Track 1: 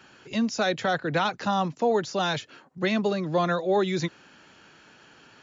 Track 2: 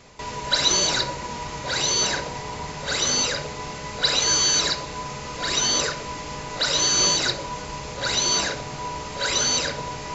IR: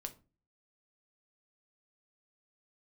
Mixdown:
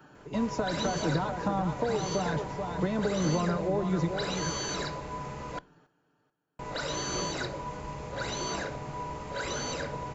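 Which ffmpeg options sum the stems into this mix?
-filter_complex "[0:a]aecho=1:1:6.7:0.48,acompressor=threshold=-25dB:ratio=6,equalizer=frequency=2300:width=1.7:gain=-8.5,volume=2dB,asplit=2[link_01][link_02];[link_02]volume=-8dB[link_03];[1:a]adelay=150,volume=-5.5dB,asplit=3[link_04][link_05][link_06];[link_04]atrim=end=5.59,asetpts=PTS-STARTPTS,afade=type=out:start_time=5.586:duration=0.004:curve=hsin[link_07];[link_05]atrim=start=5.59:end=6.59,asetpts=PTS-STARTPTS,volume=0[link_08];[link_06]atrim=start=6.59,asetpts=PTS-STARTPTS,afade=type=in:duration=0.004:curve=hsin[link_09];[link_07][link_08][link_09]concat=n=3:v=0:a=1,asplit=2[link_10][link_11];[link_11]volume=-9.5dB[link_12];[2:a]atrim=start_sample=2205[link_13];[link_12][link_13]afir=irnorm=-1:irlink=0[link_14];[link_03]aecho=0:1:434|868|1302|1736:1|0.31|0.0961|0.0298[link_15];[link_01][link_10][link_14][link_15]amix=inputs=4:normalize=0,equalizer=frequency=5000:width_type=o:width=2.3:gain=-13.5,acrossover=split=300[link_16][link_17];[link_17]acompressor=threshold=-29dB:ratio=3[link_18];[link_16][link_18]amix=inputs=2:normalize=0"

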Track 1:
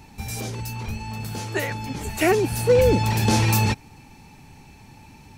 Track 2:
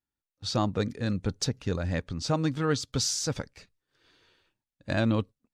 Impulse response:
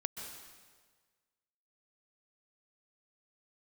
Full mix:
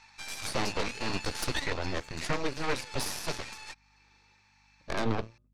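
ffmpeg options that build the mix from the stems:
-filter_complex "[0:a]highpass=frequency=1100:width=0.5412,highpass=frequency=1100:width=1.3066,acompressor=threshold=-35dB:ratio=3,volume=-0.5dB,afade=type=out:start_time=1.51:duration=0.45:silence=0.421697[link_01];[1:a]aeval=exprs='val(0)+0.00112*(sin(2*PI*50*n/s)+sin(2*PI*2*50*n/s)/2+sin(2*PI*3*50*n/s)/3+sin(2*PI*4*50*n/s)/4+sin(2*PI*5*50*n/s)/5)':channel_layout=same,flanger=delay=9.9:depth=4.2:regen=-76:speed=0.68:shape=triangular,volume=-4dB[link_02];[link_01][link_02]amix=inputs=2:normalize=0,lowpass=frequency=5700:width=0.5412,lowpass=frequency=5700:width=1.3066,equalizer=frequency=3000:width_type=o:width=0.26:gain=-9,aeval=exprs='0.0891*(cos(1*acos(clip(val(0)/0.0891,-1,1)))-cos(1*PI/2))+0.0447*(cos(6*acos(clip(val(0)/0.0891,-1,1)))-cos(6*PI/2))':channel_layout=same"

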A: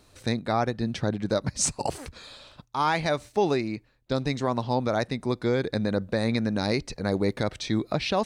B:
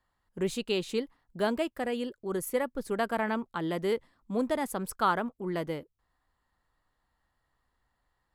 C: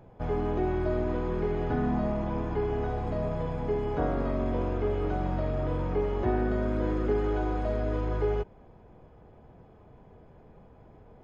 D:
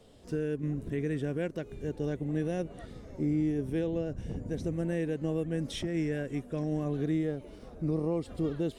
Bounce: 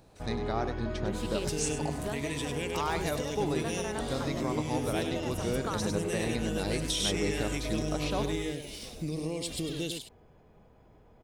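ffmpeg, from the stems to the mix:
ffmpeg -i stem1.wav -i stem2.wav -i stem3.wav -i stem4.wav -filter_complex "[0:a]volume=-8.5dB,asplit=2[link_01][link_02];[link_02]volume=-10.5dB[link_03];[1:a]adelay=650,volume=-4dB[link_04];[2:a]highshelf=frequency=2900:gain=12,volume=-6.5dB,asplit=2[link_05][link_06];[link_06]volume=-7.5dB[link_07];[3:a]aexciter=amount=10.2:drive=3.2:freq=2100,adelay=1200,volume=0.5dB,asplit=2[link_08][link_09];[link_09]volume=-11.5dB[link_10];[link_04][link_05][link_08]amix=inputs=3:normalize=0,acompressor=threshold=-31dB:ratio=6,volume=0dB[link_11];[link_03][link_07][link_10]amix=inputs=3:normalize=0,aecho=0:1:99:1[link_12];[link_01][link_11][link_12]amix=inputs=3:normalize=0" out.wav

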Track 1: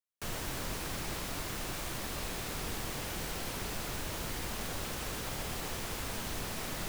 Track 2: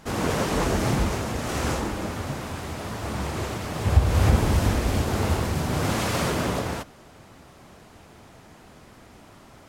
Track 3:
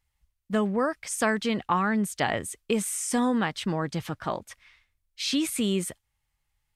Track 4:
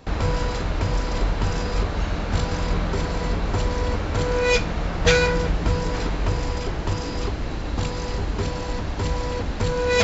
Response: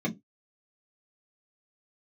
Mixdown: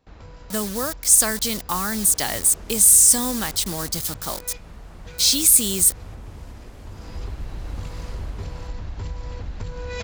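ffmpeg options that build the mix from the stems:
-filter_complex "[0:a]alimiter=level_in=10.5dB:limit=-24dB:level=0:latency=1,volume=-10.5dB,adelay=1150,volume=-16dB[link_01];[1:a]acompressor=threshold=-36dB:ratio=1.5,adelay=1850,volume=-15dB[link_02];[2:a]highshelf=frequency=3900:gain=11,acrusher=bits=5:mix=0:aa=0.000001,aexciter=amount=3.3:drive=6.9:freq=3900,volume=-2.5dB,asplit=2[link_03][link_04];[3:a]asubboost=boost=2.5:cutoff=150,acompressor=threshold=-16dB:ratio=6,volume=-10dB,afade=type=in:start_time=6.84:duration=0.44:silence=0.316228[link_05];[link_04]apad=whole_len=354551[link_06];[link_01][link_06]sidechaincompress=threshold=-35dB:ratio=8:attack=16:release=1480[link_07];[link_07][link_02][link_03][link_05]amix=inputs=4:normalize=0"

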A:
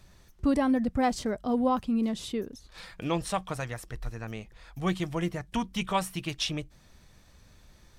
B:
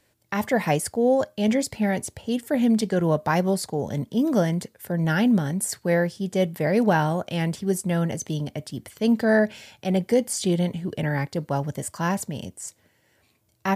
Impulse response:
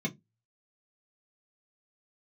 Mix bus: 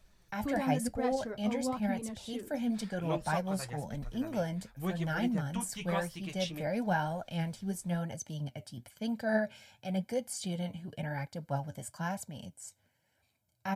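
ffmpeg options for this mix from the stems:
-filter_complex "[0:a]flanger=delay=4.4:depth=7.6:regen=-59:speed=0.59:shape=sinusoidal,volume=-1dB[link_01];[1:a]aecho=1:1:1.3:0.63,volume=-8.5dB[link_02];[link_01][link_02]amix=inputs=2:normalize=0,flanger=delay=1.4:depth=9.4:regen=53:speed=0.98:shape=triangular"

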